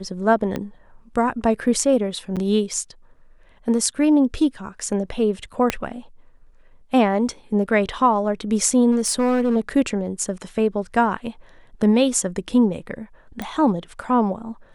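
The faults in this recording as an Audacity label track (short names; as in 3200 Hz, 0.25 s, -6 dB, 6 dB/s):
0.560000	0.560000	pop -13 dBFS
2.360000	2.370000	gap 7.3 ms
5.700000	5.700000	pop -5 dBFS
8.910000	9.570000	clipped -15 dBFS
13.420000	13.420000	pop -15 dBFS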